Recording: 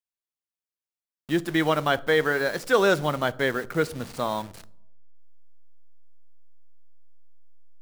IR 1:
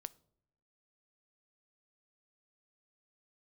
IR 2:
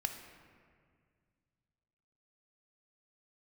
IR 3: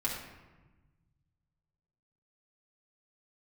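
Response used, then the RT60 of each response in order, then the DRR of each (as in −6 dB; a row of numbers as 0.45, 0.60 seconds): 1; 0.80, 2.0, 1.2 seconds; 16.0, 5.5, −5.0 decibels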